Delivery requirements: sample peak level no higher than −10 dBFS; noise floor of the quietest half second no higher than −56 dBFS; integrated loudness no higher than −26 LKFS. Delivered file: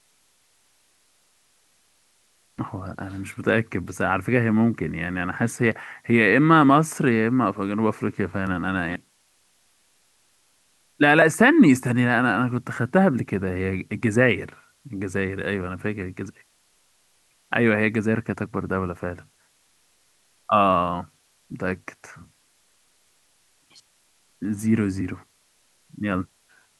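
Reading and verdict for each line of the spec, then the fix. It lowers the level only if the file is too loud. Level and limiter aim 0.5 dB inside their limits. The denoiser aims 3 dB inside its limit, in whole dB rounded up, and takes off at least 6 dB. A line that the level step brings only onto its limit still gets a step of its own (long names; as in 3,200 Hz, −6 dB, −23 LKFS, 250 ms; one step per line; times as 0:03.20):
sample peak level −3.0 dBFS: out of spec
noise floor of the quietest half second −63 dBFS: in spec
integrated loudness −22.0 LKFS: out of spec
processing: level −4.5 dB
brickwall limiter −10.5 dBFS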